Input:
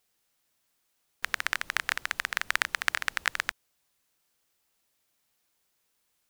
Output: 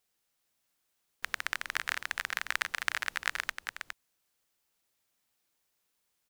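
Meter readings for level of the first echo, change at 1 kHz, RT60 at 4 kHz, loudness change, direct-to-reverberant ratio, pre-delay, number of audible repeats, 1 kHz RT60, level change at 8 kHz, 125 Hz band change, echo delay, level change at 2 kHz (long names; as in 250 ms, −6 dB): −6.5 dB, −3.5 dB, no reverb audible, −4.0 dB, no reverb audible, no reverb audible, 1, no reverb audible, −3.5 dB, can't be measured, 412 ms, −3.5 dB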